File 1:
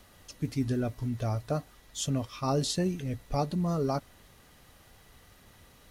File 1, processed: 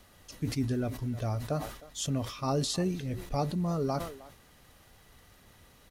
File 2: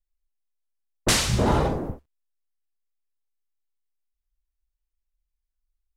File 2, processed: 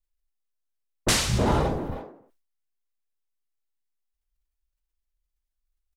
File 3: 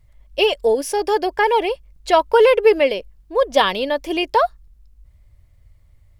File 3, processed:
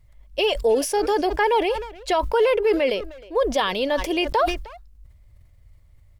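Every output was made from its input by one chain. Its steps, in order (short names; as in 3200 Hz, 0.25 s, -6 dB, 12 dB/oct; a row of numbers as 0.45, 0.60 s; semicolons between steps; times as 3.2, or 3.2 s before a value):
limiter -10.5 dBFS; speakerphone echo 0.31 s, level -18 dB; sustainer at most 89 dB/s; gain -1.5 dB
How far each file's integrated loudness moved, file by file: -1.0, -1.5, -4.0 LU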